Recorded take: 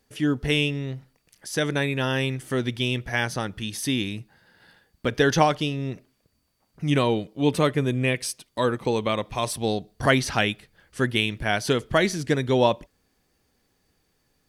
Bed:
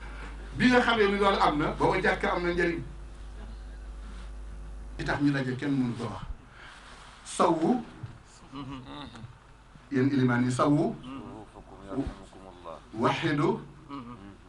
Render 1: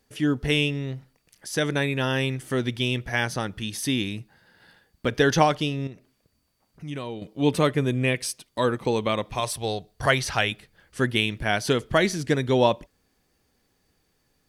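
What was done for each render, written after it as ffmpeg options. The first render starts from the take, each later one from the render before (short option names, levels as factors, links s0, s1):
-filter_complex "[0:a]asettb=1/sr,asplit=3[s0][s1][s2];[s0]atrim=end=5.874[s3];[s1]atrim=start=5.87:end=7.22,asetpts=PTS-STARTPTS,afade=t=in:d=0.004:c=qsin,afade=t=out:st=1.346:d=0.004:c=qsin,acompressor=threshold=0.00282:ratio=1.5:attack=3.2:release=140:knee=1:detection=peak[s4];[s2]atrim=start=7.216[s5];[s3][s4]acrossfade=d=0.004:c1=hsin:c2=qsin[s6];[s6][s5]acrossfade=d=0.004:c1=qsin:c2=hsin,asettb=1/sr,asplit=3[s7][s8][s9];[s7]atrim=end=9.404[s10];[s8]atrim=start=9.4:end=10.52,asetpts=PTS-STARTPTS,afade=t=in:d=0.004:c=qsin,afade=t=out:st=1.116:d=0.004:c=qsin,equalizer=f=250:w=1.4:g=-10[s11];[s9]atrim=start=10.516[s12];[s10][s11]acrossfade=d=0.004:c1=hsin:c2=qsin[s13];[s13][s12]acrossfade=d=0.004:c1=qsin:c2=hsin"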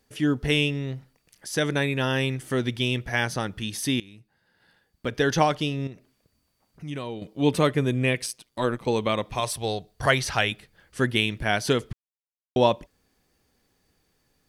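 -filter_complex "[0:a]asettb=1/sr,asplit=3[s0][s1][s2];[s0]atrim=end=8.264[s3];[s1]atrim=start=8.26:end=8.88,asetpts=PTS-STARTPTS,afade=t=in:d=0.004:c=qsin,afade=t=out:st=0.616:d=0.004:c=qsin,tremolo=f=120:d=0.667[s4];[s2]atrim=start=8.876[s5];[s3][s4]acrossfade=d=0.004:c1=hsin:c2=qsin[s6];[s6][s5]acrossfade=d=0.004:c1=qsin:c2=hsin,asplit=4[s7][s8][s9][s10];[s7]atrim=end=4,asetpts=PTS-STARTPTS,afade=t=out:st=3.996:d=0.004:c=hsin:silence=0.0944061[s11];[s8]atrim=start=4:end=11.93,asetpts=PTS-STARTPTS,afade=t=in:d=1.81:silence=0.0944061,afade=t=out:st=7.926:d=0.004:c=hsin[s12];[s9]atrim=start=11.93:end=12.56,asetpts=PTS-STARTPTS,volume=0[s13];[s10]atrim=start=12.56,asetpts=PTS-STARTPTS,afade=t=in:d=0.004:c=hsin[s14];[s11][s12][s13][s14]concat=n=4:v=0:a=1"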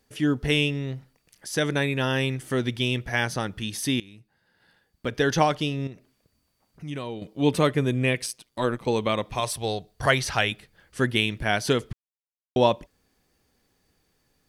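-af anull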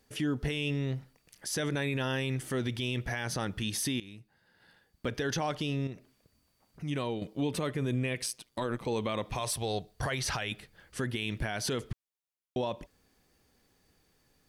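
-af "acompressor=threshold=0.0708:ratio=6,alimiter=limit=0.0708:level=0:latency=1:release=25"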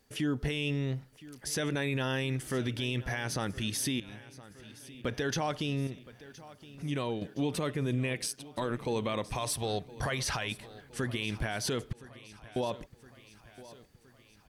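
-af "aecho=1:1:1017|2034|3051|4068|5085:0.119|0.0666|0.0373|0.0209|0.0117"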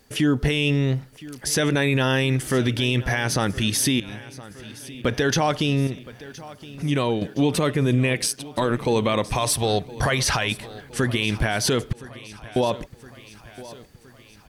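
-af "volume=3.55"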